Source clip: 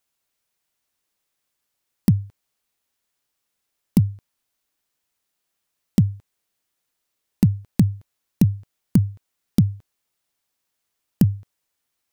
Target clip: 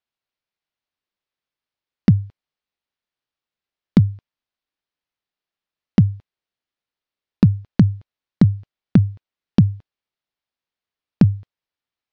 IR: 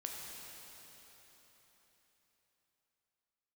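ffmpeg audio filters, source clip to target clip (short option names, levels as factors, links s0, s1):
-af "lowpass=f=4700:w=0.5412,lowpass=f=4700:w=1.3066,agate=range=0.282:threshold=0.02:ratio=16:detection=peak,volume=1.5"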